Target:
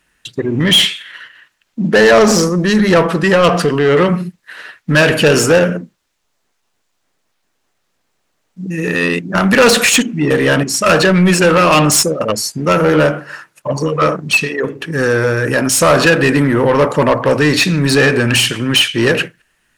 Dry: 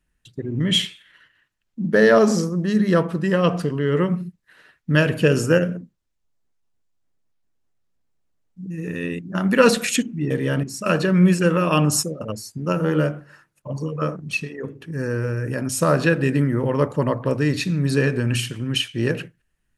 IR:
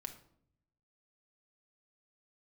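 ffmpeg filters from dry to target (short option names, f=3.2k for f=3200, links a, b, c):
-filter_complex "[0:a]acontrast=86,asplit=2[a][b];[b]highpass=f=720:p=1,volume=20dB,asoftclip=type=tanh:threshold=-0.5dB[c];[a][c]amix=inputs=2:normalize=0,lowpass=f=7.2k:p=1,volume=-6dB,volume=-1.5dB"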